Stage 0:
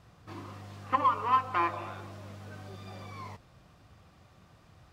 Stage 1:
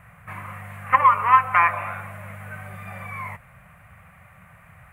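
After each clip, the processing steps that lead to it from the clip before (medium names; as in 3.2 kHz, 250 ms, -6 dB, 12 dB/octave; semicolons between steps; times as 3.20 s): FFT filter 110 Hz 0 dB, 180 Hz +2 dB, 320 Hz -21 dB, 570 Hz 0 dB, 880 Hz +1 dB, 2.2 kHz +12 dB, 3.6 kHz -14 dB, 5.2 kHz -22 dB, 9.8 kHz +8 dB; trim +7 dB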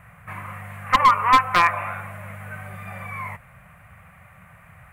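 one-sided wavefolder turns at -10 dBFS; trim +1 dB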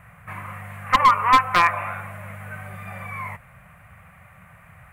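no audible change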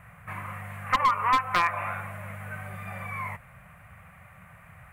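compression 2:1, threshold -21 dBFS, peak gain reduction 7 dB; trim -2 dB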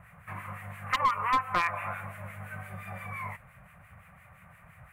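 harmonic tremolo 5.8 Hz, depth 70%, crossover 1.4 kHz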